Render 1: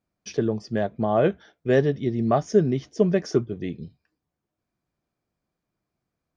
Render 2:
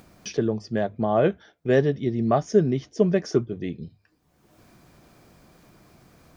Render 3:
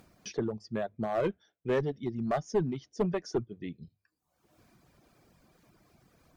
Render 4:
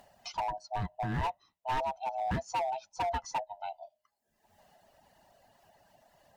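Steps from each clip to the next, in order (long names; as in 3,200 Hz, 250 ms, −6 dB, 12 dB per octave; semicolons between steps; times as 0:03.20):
mains-hum notches 50/100 Hz; upward compression, threshold −31 dBFS
asymmetric clip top −17.5 dBFS; reverb reduction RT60 1.1 s; level −7 dB
neighbouring bands swapped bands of 500 Hz; hard clipping −28 dBFS, distortion −10 dB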